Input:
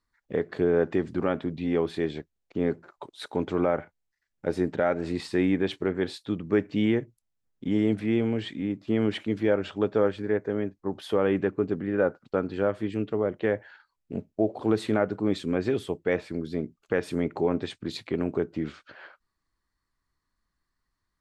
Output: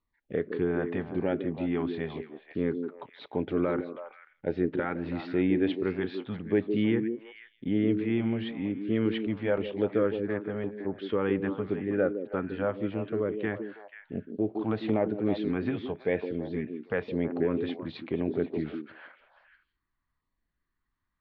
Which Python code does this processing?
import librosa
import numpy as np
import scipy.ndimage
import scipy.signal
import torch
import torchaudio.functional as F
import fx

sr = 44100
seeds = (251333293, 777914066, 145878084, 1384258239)

y = fx.filter_lfo_notch(x, sr, shape='saw_down', hz=0.94, low_hz=290.0, high_hz=1700.0, q=1.7)
y = scipy.signal.sosfilt(scipy.signal.cheby2(4, 50, 8100.0, 'lowpass', fs=sr, output='sos'), y)
y = fx.echo_stepped(y, sr, ms=162, hz=310.0, octaves=1.4, feedback_pct=70, wet_db=-3.5)
y = y * 10.0 ** (-2.0 / 20.0)